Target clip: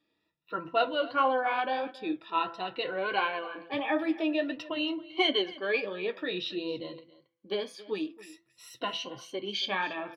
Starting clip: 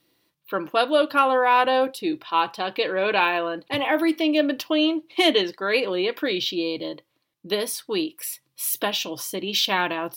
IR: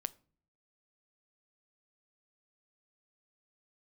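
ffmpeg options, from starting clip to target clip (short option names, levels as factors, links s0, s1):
-filter_complex "[0:a]afftfilt=real='re*pow(10,15/40*sin(2*PI*(2*log(max(b,1)*sr/1024/100)/log(2)-(0.5)*(pts-256)/sr)))':imag='im*pow(10,15/40*sin(2*PI*(2*log(max(b,1)*sr/1024/100)/log(2)-(0.5)*(pts-256)/sr)))':win_size=1024:overlap=0.75,lowpass=3700,bandreject=f=167.4:t=h:w=4,bandreject=f=334.8:t=h:w=4,bandreject=f=502.2:t=h:w=4,bandreject=f=669.6:t=h:w=4,bandreject=f=837:t=h:w=4,bandreject=f=1004.4:t=h:w=4,bandreject=f=1171.8:t=h:w=4,bandreject=f=1339.2:t=h:w=4,bandreject=f=1506.6:t=h:w=4,bandreject=f=1674:t=h:w=4,bandreject=f=1841.4:t=h:w=4,bandreject=f=2008.8:t=h:w=4,bandreject=f=2176.2:t=h:w=4,asplit=2[s0][s1];[s1]aecho=0:1:275:0.112[s2];[s0][s2]amix=inputs=2:normalize=0,flanger=delay=7.1:depth=5.2:regen=-53:speed=1.5:shape=sinusoidal,volume=0.501"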